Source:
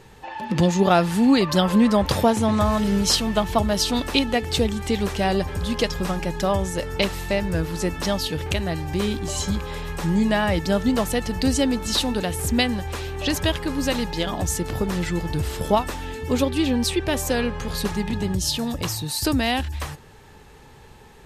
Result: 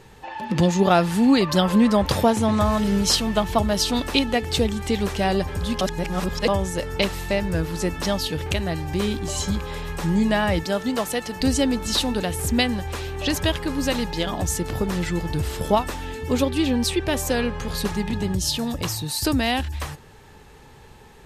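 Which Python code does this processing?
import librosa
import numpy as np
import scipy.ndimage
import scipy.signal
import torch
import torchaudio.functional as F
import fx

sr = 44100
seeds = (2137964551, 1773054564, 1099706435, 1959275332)

y = fx.highpass(x, sr, hz=340.0, slope=6, at=(10.63, 11.41))
y = fx.edit(y, sr, fx.reverse_span(start_s=5.81, length_s=0.67), tone=tone)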